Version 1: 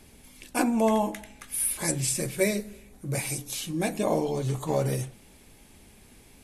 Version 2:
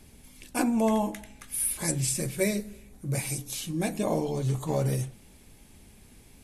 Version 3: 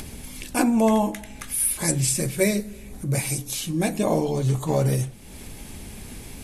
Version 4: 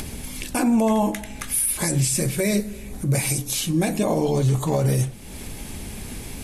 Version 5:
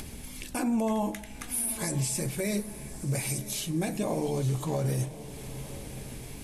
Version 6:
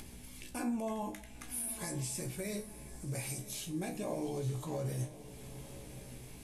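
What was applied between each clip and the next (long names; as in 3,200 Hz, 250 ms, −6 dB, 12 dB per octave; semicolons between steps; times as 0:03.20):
bass and treble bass +5 dB, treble +2 dB; level −3 dB
upward compression, threshold −33 dBFS; level +5.5 dB
brickwall limiter −17 dBFS, peak gain reduction 9.5 dB; level +4.5 dB
feedback delay with all-pass diffusion 998 ms, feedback 42%, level −14.5 dB; level −8.5 dB
tuned comb filter 61 Hz, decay 0.25 s, harmonics all, mix 80%; level −3 dB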